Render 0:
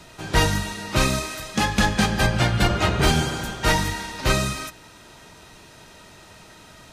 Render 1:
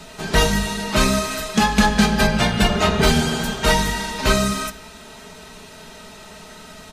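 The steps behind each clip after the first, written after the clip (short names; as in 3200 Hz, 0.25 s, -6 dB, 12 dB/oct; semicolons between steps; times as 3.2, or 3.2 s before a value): comb 4.6 ms, depth 66%; in parallel at -1 dB: compressor, threshold -24 dBFS, peak gain reduction 12 dB; on the sum: reverb RT60 0.80 s, pre-delay 5 ms, DRR 11.5 dB; gain -1 dB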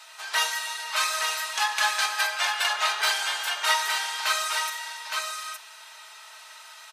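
HPF 910 Hz 24 dB/oct; notch 6900 Hz, Q 26; echo 0.866 s -4.5 dB; gain -4 dB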